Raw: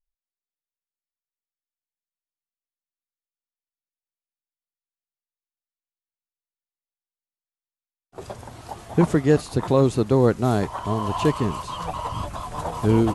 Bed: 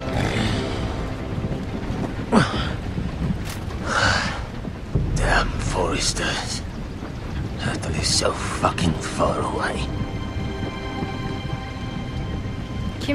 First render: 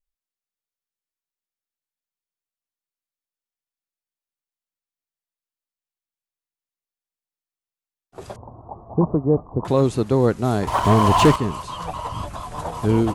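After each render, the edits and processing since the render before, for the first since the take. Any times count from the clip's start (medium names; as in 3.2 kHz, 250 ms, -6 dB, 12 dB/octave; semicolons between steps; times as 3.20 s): 8.36–9.65 s: Chebyshev low-pass 1.1 kHz, order 5; 10.67–11.36 s: waveshaping leveller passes 3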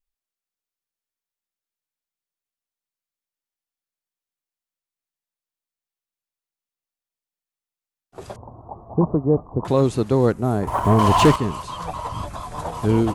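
10.32–10.99 s: peaking EQ 4.1 kHz -12.5 dB 2 oct; 11.71–12.62 s: band-stop 2.9 kHz, Q 13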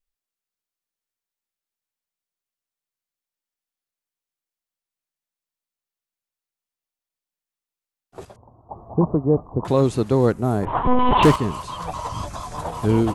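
8.25–8.70 s: gain -10 dB; 10.65–11.23 s: monotone LPC vocoder at 8 kHz 250 Hz; 11.92–12.57 s: peaking EQ 6 kHz +7.5 dB 0.79 oct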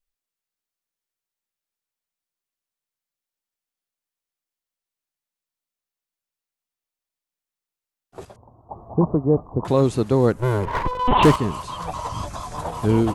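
10.37–11.08 s: comb filter that takes the minimum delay 2 ms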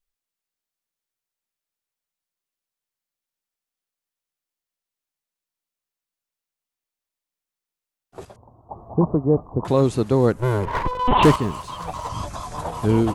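11.41–12.10 s: companding laws mixed up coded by A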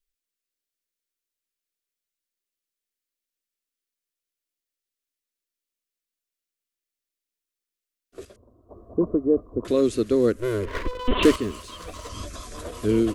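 static phaser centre 350 Hz, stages 4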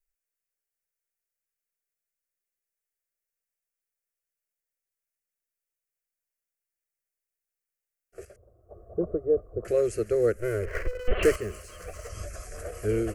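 static phaser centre 990 Hz, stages 6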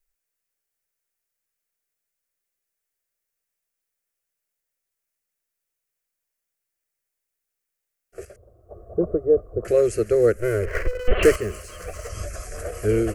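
trim +6 dB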